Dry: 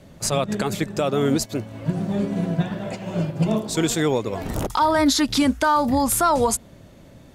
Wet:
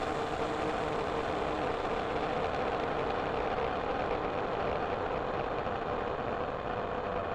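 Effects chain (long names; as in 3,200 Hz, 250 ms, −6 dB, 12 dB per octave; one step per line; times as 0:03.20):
formant filter a
extreme stretch with random phases 34×, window 0.50 s, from 0:04.04
harmonic generator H 6 −12 dB, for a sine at −22.5 dBFS
level +1 dB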